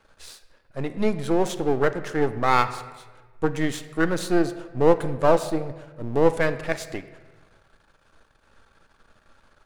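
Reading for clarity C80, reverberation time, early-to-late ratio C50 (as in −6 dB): 14.0 dB, 1.4 s, 12.5 dB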